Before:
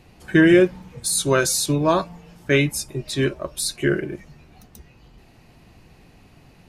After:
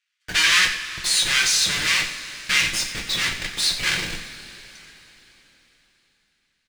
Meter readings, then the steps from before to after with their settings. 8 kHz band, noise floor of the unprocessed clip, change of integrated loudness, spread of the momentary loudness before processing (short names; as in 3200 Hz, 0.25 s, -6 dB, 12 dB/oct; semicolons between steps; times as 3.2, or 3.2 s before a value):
+2.5 dB, -52 dBFS, +0.5 dB, 14 LU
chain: half-waves squared off; LPF 6200 Hz 12 dB/oct; gate with hold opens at -33 dBFS; steep high-pass 1600 Hz 36 dB/oct; in parallel at -6 dB: Schmitt trigger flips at -32 dBFS; on the sum: echo 90 ms -13 dB; two-slope reverb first 0.27 s, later 3.9 s, from -19 dB, DRR 1 dB